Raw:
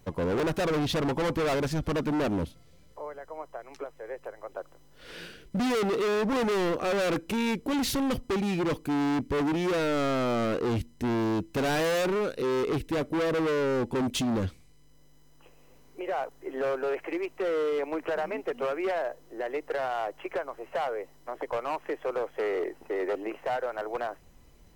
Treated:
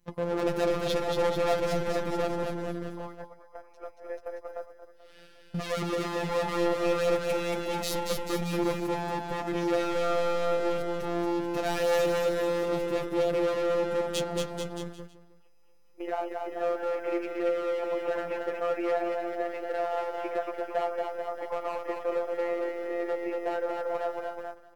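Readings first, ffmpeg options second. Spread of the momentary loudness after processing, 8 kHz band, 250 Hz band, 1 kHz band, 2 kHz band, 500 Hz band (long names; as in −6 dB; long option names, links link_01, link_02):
12 LU, −1.0 dB, −4.5 dB, 0.0 dB, −2.5 dB, +1.0 dB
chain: -filter_complex "[0:a]afftfilt=real='hypot(re,im)*cos(PI*b)':imag='0':win_size=1024:overlap=0.75,asplit=2[link_01][link_02];[link_02]adelay=14,volume=-13.5dB[link_03];[link_01][link_03]amix=inputs=2:normalize=0,aecho=1:1:230|437|623.3|791|941.9:0.631|0.398|0.251|0.158|0.1,agate=range=-10dB:threshold=-39dB:ratio=16:detection=peak,adynamicequalizer=threshold=0.00708:dfrequency=660:dqfactor=2.5:tfrequency=660:tqfactor=2.5:attack=5:release=100:ratio=0.375:range=2:mode=boostabove:tftype=bell"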